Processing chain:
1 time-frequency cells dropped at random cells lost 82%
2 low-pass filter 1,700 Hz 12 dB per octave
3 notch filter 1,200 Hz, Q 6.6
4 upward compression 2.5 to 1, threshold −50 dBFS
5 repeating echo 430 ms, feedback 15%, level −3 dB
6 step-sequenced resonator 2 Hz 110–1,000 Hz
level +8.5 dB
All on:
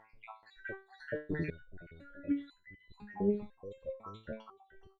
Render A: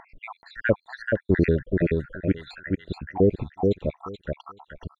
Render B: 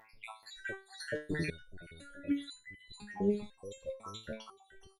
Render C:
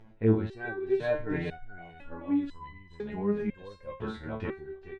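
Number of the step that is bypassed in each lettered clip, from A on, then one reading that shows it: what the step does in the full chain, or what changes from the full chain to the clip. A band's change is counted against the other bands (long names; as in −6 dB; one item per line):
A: 6, 125 Hz band +4.5 dB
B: 2, 2 kHz band +3.5 dB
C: 1, 125 Hz band +2.5 dB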